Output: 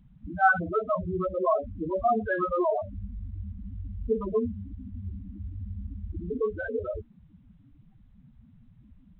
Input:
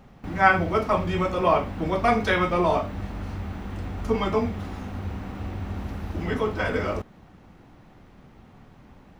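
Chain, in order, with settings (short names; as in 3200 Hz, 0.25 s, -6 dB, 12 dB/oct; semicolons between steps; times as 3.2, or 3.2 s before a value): dynamic EQ 120 Hz, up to -5 dB, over -41 dBFS, Q 0.97; loudest bins only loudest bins 4; G.726 40 kbps 8000 Hz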